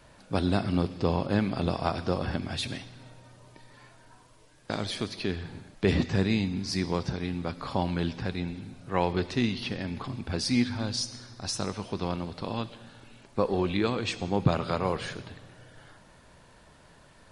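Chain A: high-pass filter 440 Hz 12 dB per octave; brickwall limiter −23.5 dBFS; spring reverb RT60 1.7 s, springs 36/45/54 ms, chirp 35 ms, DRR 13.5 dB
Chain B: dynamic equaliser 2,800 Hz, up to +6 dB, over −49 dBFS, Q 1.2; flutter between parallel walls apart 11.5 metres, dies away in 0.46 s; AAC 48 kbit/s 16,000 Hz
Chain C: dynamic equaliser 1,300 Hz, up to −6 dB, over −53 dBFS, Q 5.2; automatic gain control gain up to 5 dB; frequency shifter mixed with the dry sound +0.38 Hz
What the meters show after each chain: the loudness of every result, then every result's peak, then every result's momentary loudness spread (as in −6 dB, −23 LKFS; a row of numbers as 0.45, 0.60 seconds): −37.0, −29.0, −28.5 LKFS; −22.5, −9.0, −6.5 dBFS; 19, 10, 11 LU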